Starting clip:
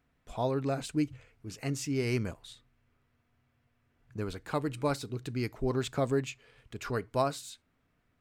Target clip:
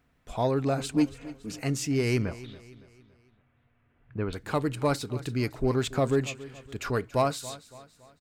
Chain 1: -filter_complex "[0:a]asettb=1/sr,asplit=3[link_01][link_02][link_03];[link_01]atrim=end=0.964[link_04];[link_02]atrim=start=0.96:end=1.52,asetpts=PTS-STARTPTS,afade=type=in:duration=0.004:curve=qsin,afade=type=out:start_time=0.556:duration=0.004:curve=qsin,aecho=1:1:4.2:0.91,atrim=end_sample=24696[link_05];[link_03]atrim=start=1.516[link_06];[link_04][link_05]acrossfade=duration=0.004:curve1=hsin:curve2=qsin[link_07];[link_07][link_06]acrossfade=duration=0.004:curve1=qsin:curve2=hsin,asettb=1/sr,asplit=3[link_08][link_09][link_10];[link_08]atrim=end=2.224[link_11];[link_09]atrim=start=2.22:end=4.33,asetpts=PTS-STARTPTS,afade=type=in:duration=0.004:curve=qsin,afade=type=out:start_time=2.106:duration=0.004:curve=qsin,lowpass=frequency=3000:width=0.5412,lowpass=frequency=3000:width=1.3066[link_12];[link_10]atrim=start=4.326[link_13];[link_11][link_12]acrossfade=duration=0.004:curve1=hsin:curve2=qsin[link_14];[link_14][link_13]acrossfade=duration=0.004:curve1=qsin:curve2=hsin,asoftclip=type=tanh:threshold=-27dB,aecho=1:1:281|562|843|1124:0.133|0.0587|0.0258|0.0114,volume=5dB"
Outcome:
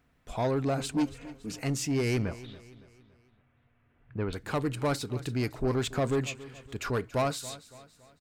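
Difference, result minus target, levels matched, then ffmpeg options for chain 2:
soft clipping: distortion +11 dB
-filter_complex "[0:a]asettb=1/sr,asplit=3[link_01][link_02][link_03];[link_01]atrim=end=0.964[link_04];[link_02]atrim=start=0.96:end=1.52,asetpts=PTS-STARTPTS,afade=type=in:duration=0.004:curve=qsin,afade=type=out:start_time=0.556:duration=0.004:curve=qsin,aecho=1:1:4.2:0.91,atrim=end_sample=24696[link_05];[link_03]atrim=start=1.516[link_06];[link_04][link_05]acrossfade=duration=0.004:curve1=hsin:curve2=qsin[link_07];[link_07][link_06]acrossfade=duration=0.004:curve1=qsin:curve2=hsin,asettb=1/sr,asplit=3[link_08][link_09][link_10];[link_08]atrim=end=2.224[link_11];[link_09]atrim=start=2.22:end=4.33,asetpts=PTS-STARTPTS,afade=type=in:duration=0.004:curve=qsin,afade=type=out:start_time=2.106:duration=0.004:curve=qsin,lowpass=frequency=3000:width=0.5412,lowpass=frequency=3000:width=1.3066[link_12];[link_10]atrim=start=4.326[link_13];[link_11][link_12]acrossfade=duration=0.004:curve1=hsin:curve2=qsin[link_14];[link_14][link_13]acrossfade=duration=0.004:curve1=qsin:curve2=hsin,asoftclip=type=tanh:threshold=-18.5dB,aecho=1:1:281|562|843|1124:0.133|0.0587|0.0258|0.0114,volume=5dB"

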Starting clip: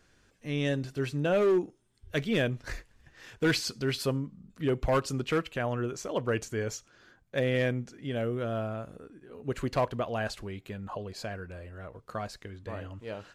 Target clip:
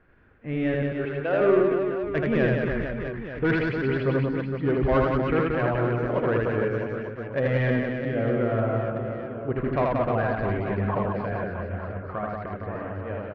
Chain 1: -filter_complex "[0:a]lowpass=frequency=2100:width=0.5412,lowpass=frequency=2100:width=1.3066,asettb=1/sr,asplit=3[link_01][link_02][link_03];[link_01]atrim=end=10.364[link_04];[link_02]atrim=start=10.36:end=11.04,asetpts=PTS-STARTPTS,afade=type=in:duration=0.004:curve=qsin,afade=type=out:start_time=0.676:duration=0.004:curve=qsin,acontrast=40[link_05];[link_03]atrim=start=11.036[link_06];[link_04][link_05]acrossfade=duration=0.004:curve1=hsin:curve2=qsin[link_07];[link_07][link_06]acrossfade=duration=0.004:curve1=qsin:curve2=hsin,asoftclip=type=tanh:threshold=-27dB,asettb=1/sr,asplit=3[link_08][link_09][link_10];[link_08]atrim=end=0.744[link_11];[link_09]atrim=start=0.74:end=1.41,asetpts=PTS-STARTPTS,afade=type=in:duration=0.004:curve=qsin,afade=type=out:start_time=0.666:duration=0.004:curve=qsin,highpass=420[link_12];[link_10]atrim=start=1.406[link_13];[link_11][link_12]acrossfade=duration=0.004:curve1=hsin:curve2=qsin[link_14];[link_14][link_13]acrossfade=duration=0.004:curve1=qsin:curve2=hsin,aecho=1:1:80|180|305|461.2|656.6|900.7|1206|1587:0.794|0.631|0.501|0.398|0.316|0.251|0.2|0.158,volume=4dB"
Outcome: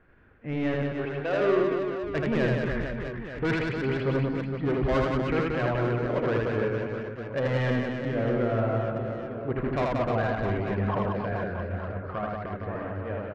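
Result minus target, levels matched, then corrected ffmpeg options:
soft clipping: distortion +9 dB
-filter_complex "[0:a]lowpass=frequency=2100:width=0.5412,lowpass=frequency=2100:width=1.3066,asettb=1/sr,asplit=3[link_01][link_02][link_03];[link_01]atrim=end=10.364[link_04];[link_02]atrim=start=10.36:end=11.04,asetpts=PTS-STARTPTS,afade=type=in:duration=0.004:curve=qsin,afade=type=out:start_time=0.676:duration=0.004:curve=qsin,acontrast=40[link_05];[link_03]atrim=start=11.036[link_06];[link_04][link_05]acrossfade=duration=0.004:curve1=hsin:curve2=qsin[link_07];[link_07][link_06]acrossfade=duration=0.004:curve1=qsin:curve2=hsin,asoftclip=type=tanh:threshold=-20dB,asettb=1/sr,asplit=3[link_08][link_09][link_10];[link_08]atrim=end=0.744[link_11];[link_09]atrim=start=0.74:end=1.41,asetpts=PTS-STARTPTS,afade=type=in:duration=0.004:curve=qsin,afade=type=out:start_time=0.666:duration=0.004:curve=qsin,highpass=420[link_12];[link_10]atrim=start=1.406[link_13];[link_11][link_12]acrossfade=duration=0.004:curve1=hsin:curve2=qsin[link_14];[link_14][link_13]acrossfade=duration=0.004:curve1=qsin:curve2=hsin,aecho=1:1:80|180|305|461.2|656.6|900.7|1206|1587:0.794|0.631|0.501|0.398|0.316|0.251|0.2|0.158,volume=4dB"

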